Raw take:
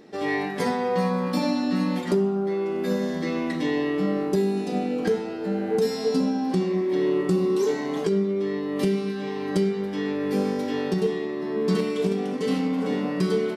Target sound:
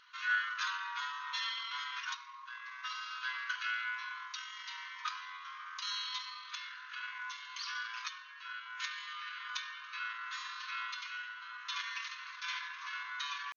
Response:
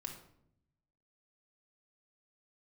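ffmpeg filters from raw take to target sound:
-af "asetrate=34006,aresample=44100,atempo=1.29684,afftfilt=real='re*between(b*sr/4096,940,6700)':imag='im*between(b*sr/4096,940,6700)':win_size=4096:overlap=0.75"

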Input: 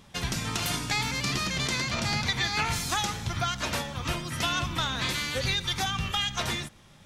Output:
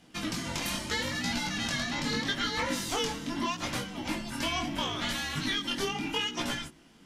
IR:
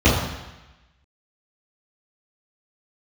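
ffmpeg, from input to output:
-af "flanger=delay=16:depth=7.4:speed=0.77,afreqshift=-370"

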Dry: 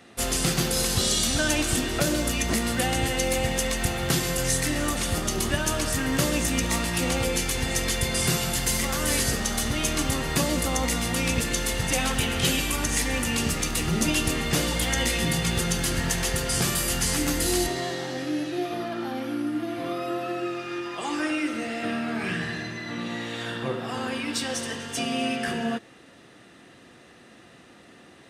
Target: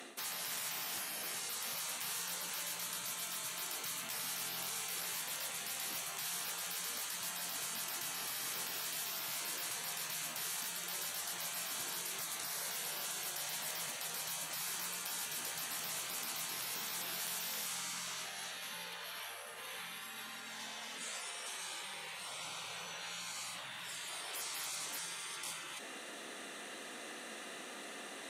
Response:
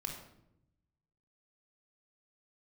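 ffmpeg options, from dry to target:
-af "bandreject=frequency=5000:width=6.9,areverse,acompressor=threshold=-35dB:ratio=12,areverse,highpass=frequency=250:width=0.5412,highpass=frequency=250:width=1.3066,aemphasis=mode=production:type=cd,afftfilt=real='re*lt(hypot(re,im),0.0126)':imag='im*lt(hypot(re,im),0.0126)':win_size=1024:overlap=0.75,volume=4.5dB"

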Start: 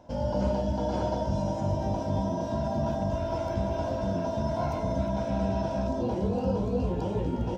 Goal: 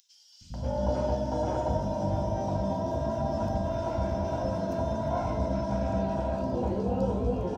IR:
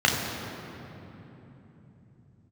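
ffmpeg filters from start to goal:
-filter_complex "[0:a]acompressor=mode=upward:threshold=-38dB:ratio=2.5,acrossover=split=190|3500[link_01][link_02][link_03];[link_01]adelay=410[link_04];[link_02]adelay=540[link_05];[link_04][link_05][link_03]amix=inputs=3:normalize=0,asplit=2[link_06][link_07];[1:a]atrim=start_sample=2205[link_08];[link_07][link_08]afir=irnorm=-1:irlink=0,volume=-31dB[link_09];[link_06][link_09]amix=inputs=2:normalize=0"

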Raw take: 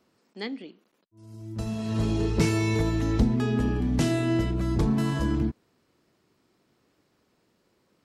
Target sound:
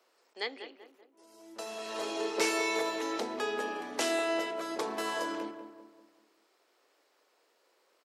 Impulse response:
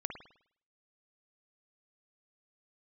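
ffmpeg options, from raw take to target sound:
-filter_complex "[0:a]highpass=frequency=450:width=0.5412,highpass=frequency=450:width=1.3066,asplit=2[link_01][link_02];[link_02]adelay=193,lowpass=frequency=1600:poles=1,volume=-9dB,asplit=2[link_03][link_04];[link_04]adelay=193,lowpass=frequency=1600:poles=1,volume=0.47,asplit=2[link_05][link_06];[link_06]adelay=193,lowpass=frequency=1600:poles=1,volume=0.47,asplit=2[link_07][link_08];[link_08]adelay=193,lowpass=frequency=1600:poles=1,volume=0.47,asplit=2[link_09][link_10];[link_10]adelay=193,lowpass=frequency=1600:poles=1,volume=0.47[link_11];[link_01][link_03][link_05][link_07][link_09][link_11]amix=inputs=6:normalize=0,volume=1.5dB"

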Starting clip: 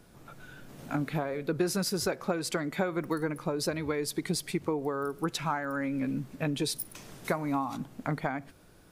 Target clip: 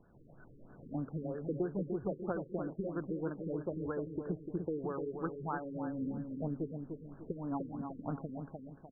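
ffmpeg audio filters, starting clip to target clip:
ffmpeg -i in.wav -filter_complex "[0:a]tremolo=f=160:d=0.261,asplit=2[link_01][link_02];[link_02]adelay=298,lowpass=frequency=1200:poles=1,volume=-5.5dB,asplit=2[link_03][link_04];[link_04]adelay=298,lowpass=frequency=1200:poles=1,volume=0.42,asplit=2[link_05][link_06];[link_06]adelay=298,lowpass=frequency=1200:poles=1,volume=0.42,asplit=2[link_07][link_08];[link_08]adelay=298,lowpass=frequency=1200:poles=1,volume=0.42,asplit=2[link_09][link_10];[link_10]adelay=298,lowpass=frequency=1200:poles=1,volume=0.42[link_11];[link_01][link_03][link_05][link_07][link_09][link_11]amix=inputs=6:normalize=0,afftfilt=real='re*lt(b*sr/1024,500*pow(1800/500,0.5+0.5*sin(2*PI*3.1*pts/sr)))':imag='im*lt(b*sr/1024,500*pow(1800/500,0.5+0.5*sin(2*PI*3.1*pts/sr)))':win_size=1024:overlap=0.75,volume=-5.5dB" out.wav

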